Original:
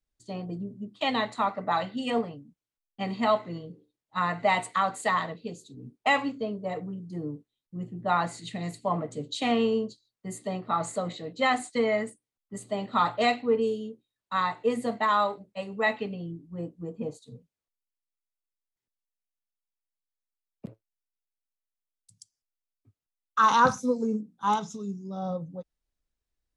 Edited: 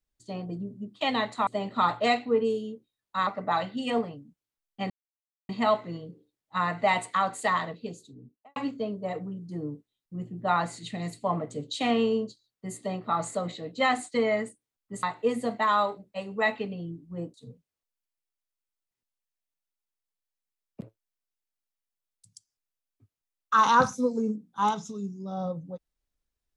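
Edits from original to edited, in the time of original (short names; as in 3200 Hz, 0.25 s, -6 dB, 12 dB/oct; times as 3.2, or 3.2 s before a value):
3.1 insert silence 0.59 s
5.52–6.17 studio fade out
12.64–14.44 move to 1.47
16.75–17.19 cut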